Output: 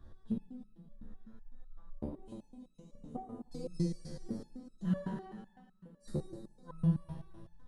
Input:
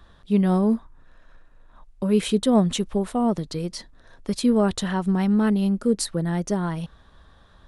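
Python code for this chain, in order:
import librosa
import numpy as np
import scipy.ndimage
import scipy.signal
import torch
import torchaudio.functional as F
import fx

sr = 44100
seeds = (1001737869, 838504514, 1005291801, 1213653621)

p1 = fx.curve_eq(x, sr, hz=(140.0, 230.0, 2900.0, 6000.0), db=(0, -2, -20, -13))
p2 = fx.gate_flip(p1, sr, shuts_db=-20.0, range_db=-37)
p3 = p2 + fx.echo_feedback(p2, sr, ms=300, feedback_pct=46, wet_db=-13, dry=0)
p4 = fx.rev_plate(p3, sr, seeds[0], rt60_s=1.9, hf_ratio=1.0, predelay_ms=0, drr_db=-1.5)
p5 = fx.resonator_held(p4, sr, hz=7.9, low_hz=74.0, high_hz=1300.0)
y = p5 * 10.0 ** (8.0 / 20.0)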